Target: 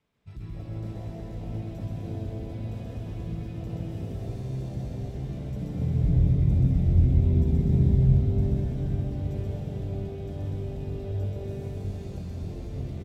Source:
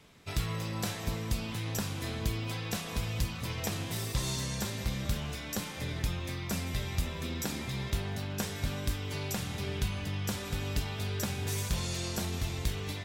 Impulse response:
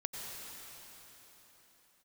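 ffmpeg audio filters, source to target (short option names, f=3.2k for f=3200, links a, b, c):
-filter_complex "[0:a]alimiter=level_in=4.5dB:limit=-24dB:level=0:latency=1:release=41,volume=-4.5dB,asettb=1/sr,asplit=3[a][b][c];[a]atrim=end=5.614[d];[b]atrim=start=5.61:end=8.03,asetpts=PTS-STARTPTS,afade=t=in:d=0.004:c=qsin,afade=t=out:st=2.416:d=0.004:c=qsin,bass=f=250:g=14,treble=f=4k:g=1[e];[c]atrim=start=8.026[f];[d][e]acrossfade=d=0.004:c1=hsin:c2=qsin[g];[g][f]acrossfade=d=0.004:c1=qsin:c2=hsin,aecho=1:1:130|247|352.3|447.1|532.4:0.631|0.398|0.251|0.158|0.1,afwtdn=0.02,highshelf=f=3.7k:g=-9[h];[1:a]atrim=start_sample=2205,asetrate=33957,aresample=44100[i];[h][i]afir=irnorm=-1:irlink=0"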